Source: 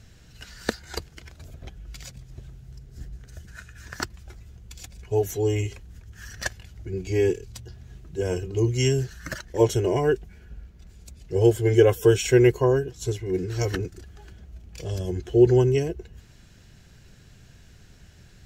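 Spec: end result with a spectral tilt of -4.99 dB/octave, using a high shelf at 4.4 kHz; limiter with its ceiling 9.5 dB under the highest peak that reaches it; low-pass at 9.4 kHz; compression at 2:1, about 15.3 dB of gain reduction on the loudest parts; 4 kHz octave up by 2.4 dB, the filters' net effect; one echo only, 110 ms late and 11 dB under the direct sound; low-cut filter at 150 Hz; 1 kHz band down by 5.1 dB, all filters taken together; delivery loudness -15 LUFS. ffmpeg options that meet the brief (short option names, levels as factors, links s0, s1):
-af "highpass=150,lowpass=9400,equalizer=f=1000:t=o:g=-7,equalizer=f=4000:t=o:g=8.5,highshelf=f=4400:g=-7,acompressor=threshold=0.00794:ratio=2,alimiter=level_in=1.58:limit=0.0631:level=0:latency=1,volume=0.631,aecho=1:1:110:0.282,volume=18.8"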